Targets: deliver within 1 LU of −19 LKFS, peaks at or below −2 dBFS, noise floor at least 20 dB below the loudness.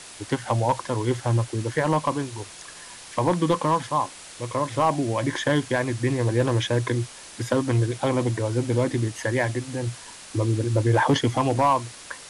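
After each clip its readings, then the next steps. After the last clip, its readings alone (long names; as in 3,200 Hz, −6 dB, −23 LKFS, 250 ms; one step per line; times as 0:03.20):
share of clipped samples 0.3%; peaks flattened at −12.5 dBFS; background noise floor −43 dBFS; target noise floor −45 dBFS; integrated loudness −24.5 LKFS; sample peak −12.5 dBFS; target loudness −19.0 LKFS
→ clipped peaks rebuilt −12.5 dBFS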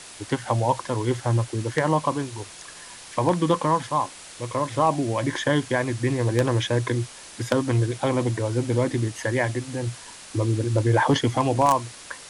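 share of clipped samples 0.0%; background noise floor −43 dBFS; target noise floor −44 dBFS
→ noise reduction from a noise print 6 dB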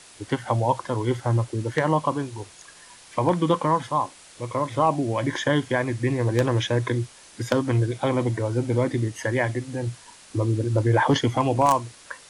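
background noise floor −49 dBFS; integrated loudness −24.0 LKFS; sample peak −3.5 dBFS; target loudness −19.0 LKFS
→ level +5 dB
brickwall limiter −2 dBFS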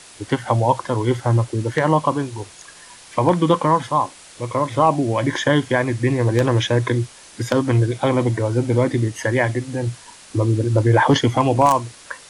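integrated loudness −19.5 LKFS; sample peak −2.0 dBFS; background noise floor −44 dBFS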